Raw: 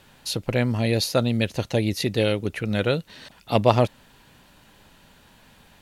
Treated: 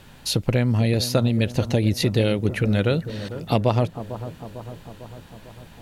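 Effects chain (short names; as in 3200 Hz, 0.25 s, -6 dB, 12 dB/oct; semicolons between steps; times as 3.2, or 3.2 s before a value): low shelf 230 Hz +7.5 dB; compressor 4:1, threshold -20 dBFS, peak gain reduction 9.5 dB; analogue delay 0.45 s, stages 4096, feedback 61%, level -12.5 dB; gain +3.5 dB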